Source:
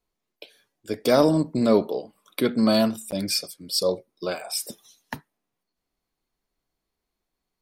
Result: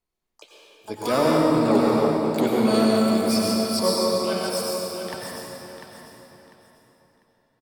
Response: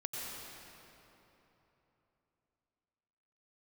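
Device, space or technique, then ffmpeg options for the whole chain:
shimmer-style reverb: -filter_complex "[0:a]asplit=2[a][b];[b]asetrate=88200,aresample=44100,atempo=0.5,volume=-7dB[c];[a][c]amix=inputs=2:normalize=0[d];[1:a]atrim=start_sample=2205[e];[d][e]afir=irnorm=-1:irlink=0,asettb=1/sr,asplit=3[f][g][h];[f]atrim=end=3.834[i];[g]atrim=start=3.83:end=4.5,asetpts=PTS-STARTPTS,afade=t=in:d=0.004:c=qsin,afade=t=out:st=0.666:d=0.004:c=qsin,aecho=1:1:5.2:0.92,atrim=end_sample=29547[j];[h]atrim=start=4.496[k];[i][j]acrossfade=d=0.004:c1=hsin:c2=qsin[l];[l][k]acrossfade=d=0.004:c1=qsin:c2=hsin,aecho=1:1:697|1394|2091:0.376|0.0977|0.0254,volume=-1.5dB"

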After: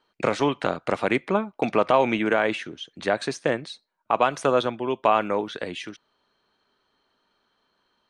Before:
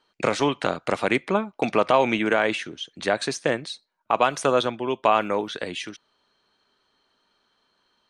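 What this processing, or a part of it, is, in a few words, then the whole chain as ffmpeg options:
behind a face mask: -af "highshelf=f=3.4k:g=-7"

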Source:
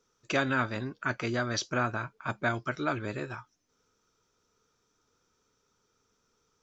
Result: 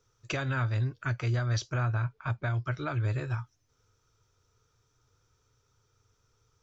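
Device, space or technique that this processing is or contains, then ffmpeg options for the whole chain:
car stereo with a boomy subwoofer: -filter_complex "[0:a]asettb=1/sr,asplit=3[a][b][c];[a]atrim=end=0.744[d];[b]atrim=start=0.74:end=1.15,asetpts=PTS-STARTPTS,afade=t=in:d=0.004:c=qsin,afade=t=out:st=0.406:d=0.004:c=qsin,equalizer=f=970:t=o:w=1.4:g=-5[e];[c]atrim=start=1.146[f];[d][e]acrossfade=d=0.004:c1=hsin:c2=qsin[g];[g][f]acrossfade=d=0.004:c1=qsin:c2=hsin,lowshelf=f=150:t=q:w=3:g=9,alimiter=limit=-21.5dB:level=0:latency=1:release=330,asettb=1/sr,asplit=3[h][i][j];[h]atrim=end=1.854[k];[i]atrim=start=1.85:end=2.94,asetpts=PTS-STARTPTS,afade=t=in:d=0.004:c=qsin,afade=t=out:st=1.086:d=0.004:c=qsin,lowpass=5.6k[l];[j]atrim=start=2.936[m];[k][l]acrossfade=d=0.004:c1=hsin:c2=qsin[n];[n][m]acrossfade=d=0.004:c1=qsin:c2=hsin"

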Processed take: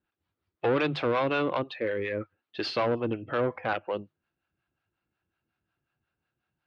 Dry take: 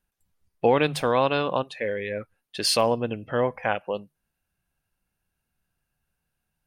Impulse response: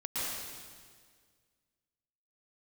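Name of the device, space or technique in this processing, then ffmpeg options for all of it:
guitar amplifier with harmonic tremolo: -filter_complex "[0:a]acrossover=split=540[a][b];[a]aeval=exprs='val(0)*(1-0.7/2+0.7/2*cos(2*PI*5.5*n/s))':c=same[c];[b]aeval=exprs='val(0)*(1-0.7/2-0.7/2*cos(2*PI*5.5*n/s))':c=same[d];[c][d]amix=inputs=2:normalize=0,asoftclip=type=tanh:threshold=-24dB,highpass=91,equalizer=f=100:t=q:w=4:g=4,equalizer=f=180:t=q:w=4:g=-4,equalizer=f=330:t=q:w=4:g=10,equalizer=f=1.3k:t=q:w=4:g=5,lowpass=f=4k:w=0.5412,lowpass=f=4k:w=1.3066,volume=2dB"

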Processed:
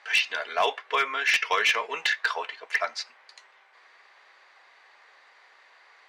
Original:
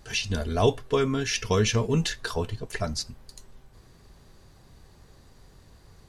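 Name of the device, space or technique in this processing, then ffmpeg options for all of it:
megaphone: -af "highpass=560,lowpass=2.8k,highpass=840,equalizer=f=2.1k:t=o:w=0.56:g=8,asoftclip=type=hard:threshold=-23dB,volume=8dB"

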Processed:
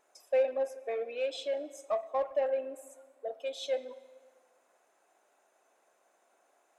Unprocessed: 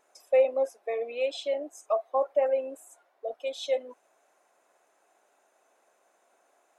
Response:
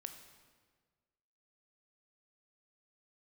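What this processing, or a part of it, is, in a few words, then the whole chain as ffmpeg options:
saturated reverb return: -filter_complex "[0:a]asplit=2[a][b];[1:a]atrim=start_sample=2205[c];[b][c]afir=irnorm=-1:irlink=0,asoftclip=type=tanh:threshold=-32.5dB,volume=1dB[d];[a][d]amix=inputs=2:normalize=0,volume=-7dB"

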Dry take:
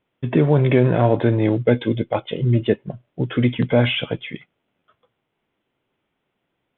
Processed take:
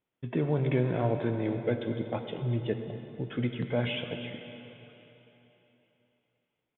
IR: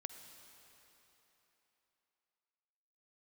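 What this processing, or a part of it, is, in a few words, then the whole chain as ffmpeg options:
cave: -filter_complex "[0:a]aecho=1:1:240:0.168[a];[1:a]atrim=start_sample=2205[b];[a][b]afir=irnorm=-1:irlink=0,volume=-8.5dB"

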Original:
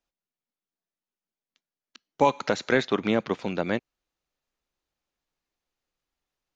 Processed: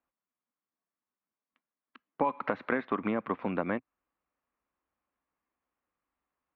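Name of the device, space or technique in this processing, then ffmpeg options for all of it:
bass amplifier: -af "acompressor=threshold=-26dB:ratio=6,highpass=61,equalizer=f=130:t=q:w=4:g=-9,equalizer=f=260:t=q:w=4:g=4,equalizer=f=390:t=q:w=4:g=-3,equalizer=f=1.1k:t=q:w=4:g=8,lowpass=f=2.3k:w=0.5412,lowpass=f=2.3k:w=1.3066"

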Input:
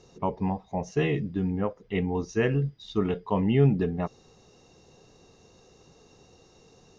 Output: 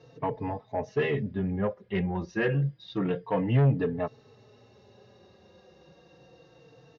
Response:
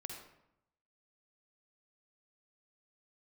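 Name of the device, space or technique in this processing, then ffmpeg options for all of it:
barber-pole flanger into a guitar amplifier: -filter_complex "[0:a]asplit=2[a][b];[b]adelay=4,afreqshift=-0.29[c];[a][c]amix=inputs=2:normalize=1,asoftclip=type=tanh:threshold=-22dB,highpass=89,equalizer=f=120:t=q:w=4:g=8,equalizer=f=550:t=q:w=4:g=7,equalizer=f=1.7k:t=q:w=4:g=6,lowpass=f=4.6k:w=0.5412,lowpass=f=4.6k:w=1.3066,volume=2dB"

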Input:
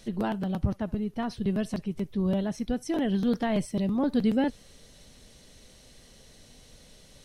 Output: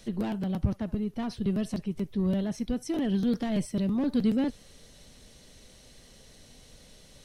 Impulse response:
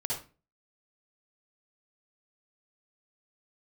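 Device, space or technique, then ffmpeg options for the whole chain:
one-band saturation: -filter_complex "[0:a]acrossover=split=400|2700[a][b][c];[b]asoftclip=type=tanh:threshold=-37dB[d];[a][d][c]amix=inputs=3:normalize=0"

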